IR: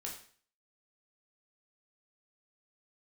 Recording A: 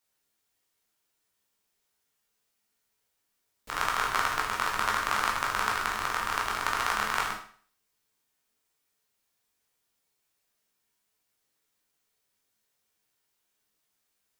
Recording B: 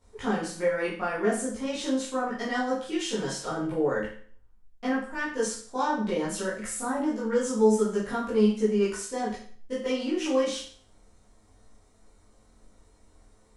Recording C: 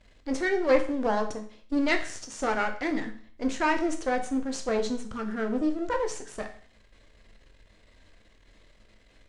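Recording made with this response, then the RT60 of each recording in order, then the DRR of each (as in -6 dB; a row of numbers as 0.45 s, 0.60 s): A; 0.50 s, 0.50 s, 0.50 s; -2.5 dB, -10.5 dB, 5.0 dB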